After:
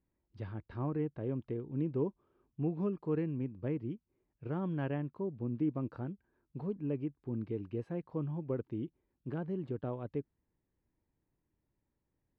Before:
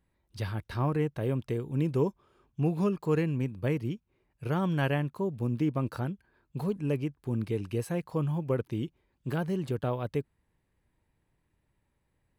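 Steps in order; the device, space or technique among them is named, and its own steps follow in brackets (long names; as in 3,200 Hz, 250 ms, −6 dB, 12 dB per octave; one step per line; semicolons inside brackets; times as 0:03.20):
phone in a pocket (low-pass filter 3,300 Hz 12 dB per octave; parametric band 300 Hz +6 dB 1 octave; high-shelf EQ 2,000 Hz −9 dB)
level −9 dB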